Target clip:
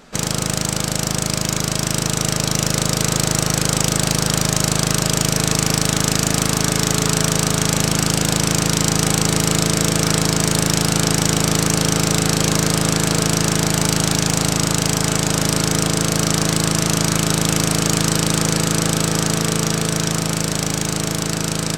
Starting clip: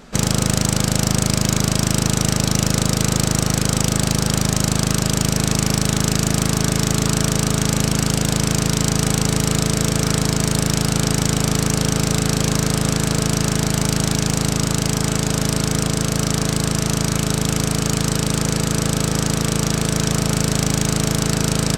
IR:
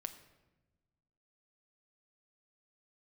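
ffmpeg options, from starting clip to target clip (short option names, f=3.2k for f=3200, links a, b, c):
-filter_complex "[0:a]lowshelf=f=220:g=-7.5,dynaudnorm=f=300:g=17:m=11.5dB,asplit=2[a][b];[1:a]atrim=start_sample=2205[c];[b][c]afir=irnorm=-1:irlink=0,volume=6dB[d];[a][d]amix=inputs=2:normalize=0,volume=-8dB"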